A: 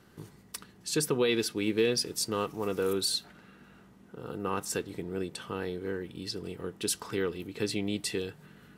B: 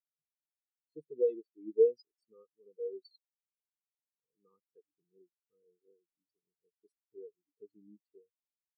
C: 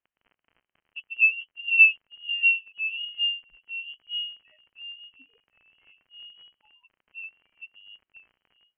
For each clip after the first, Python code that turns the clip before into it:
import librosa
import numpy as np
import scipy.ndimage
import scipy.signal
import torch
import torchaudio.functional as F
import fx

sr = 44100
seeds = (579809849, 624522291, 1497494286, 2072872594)

y1 = fx.spectral_expand(x, sr, expansion=4.0)
y2 = fx.dmg_crackle(y1, sr, seeds[0], per_s=17.0, level_db=-50.0)
y2 = fx.echo_pitch(y2, sr, ms=178, semitones=-4, count=3, db_per_echo=-6.0)
y2 = fx.freq_invert(y2, sr, carrier_hz=3100)
y2 = F.gain(torch.from_numpy(y2), 8.5).numpy()